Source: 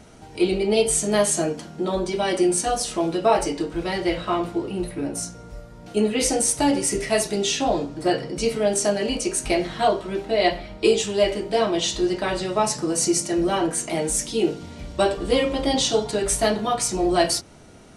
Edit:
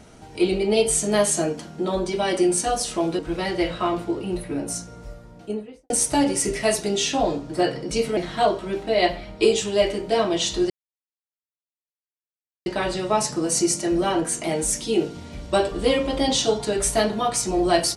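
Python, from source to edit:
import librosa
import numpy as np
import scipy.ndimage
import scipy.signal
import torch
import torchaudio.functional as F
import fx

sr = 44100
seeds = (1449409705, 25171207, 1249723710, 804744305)

y = fx.studio_fade_out(x, sr, start_s=5.54, length_s=0.83)
y = fx.edit(y, sr, fx.cut(start_s=3.19, length_s=0.47),
    fx.cut(start_s=8.64, length_s=0.95),
    fx.insert_silence(at_s=12.12, length_s=1.96), tone=tone)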